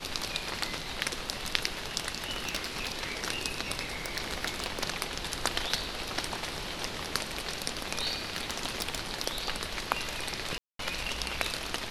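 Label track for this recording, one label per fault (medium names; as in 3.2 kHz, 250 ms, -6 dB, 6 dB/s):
2.310000	2.920000	clipped -24.5 dBFS
4.060000	4.840000	clipped -22 dBFS
8.250000	8.990000	clipped -22.5 dBFS
10.580000	10.790000	dropout 213 ms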